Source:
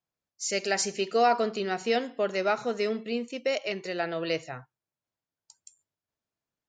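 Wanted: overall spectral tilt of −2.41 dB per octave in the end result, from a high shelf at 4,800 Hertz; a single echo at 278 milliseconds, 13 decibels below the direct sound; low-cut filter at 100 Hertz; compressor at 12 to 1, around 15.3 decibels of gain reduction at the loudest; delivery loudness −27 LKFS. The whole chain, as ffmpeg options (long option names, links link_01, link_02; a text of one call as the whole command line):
ffmpeg -i in.wav -af "highpass=100,highshelf=frequency=4800:gain=7.5,acompressor=threshold=-34dB:ratio=12,aecho=1:1:278:0.224,volume=11.5dB" out.wav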